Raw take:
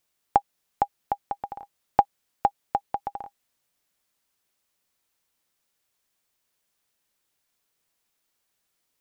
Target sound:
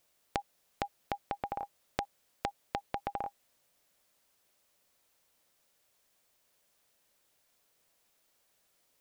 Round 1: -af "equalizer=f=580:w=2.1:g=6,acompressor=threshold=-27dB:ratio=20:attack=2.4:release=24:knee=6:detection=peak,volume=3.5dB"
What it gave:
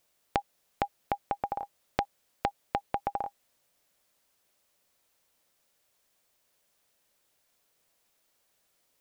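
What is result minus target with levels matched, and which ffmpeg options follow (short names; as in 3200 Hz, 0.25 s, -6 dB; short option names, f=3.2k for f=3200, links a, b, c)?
compressor: peak gain reduction -6.5 dB
-af "equalizer=f=580:w=2.1:g=6,acompressor=threshold=-34dB:ratio=20:attack=2.4:release=24:knee=6:detection=peak,volume=3.5dB"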